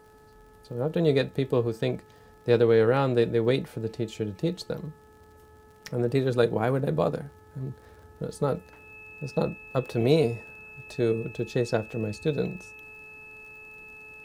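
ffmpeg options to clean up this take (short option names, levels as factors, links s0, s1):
-af "adeclick=t=4,bandreject=f=430.2:t=h:w=4,bandreject=f=860.4:t=h:w=4,bandreject=f=1290.6:t=h:w=4,bandreject=f=1720.8:t=h:w=4,bandreject=f=2600:w=30"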